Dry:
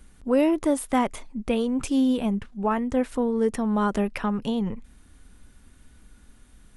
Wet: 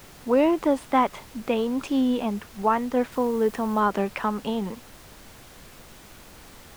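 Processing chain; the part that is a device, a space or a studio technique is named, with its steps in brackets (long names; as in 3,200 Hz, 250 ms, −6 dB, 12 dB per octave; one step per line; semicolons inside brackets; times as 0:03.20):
horn gramophone (band-pass filter 240–4,400 Hz; parametric band 960 Hz +4.5 dB; tape wow and flutter; pink noise bed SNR 21 dB)
0:03.12–0:03.80: high-shelf EQ 9,900 Hz +6.5 dB
level +1 dB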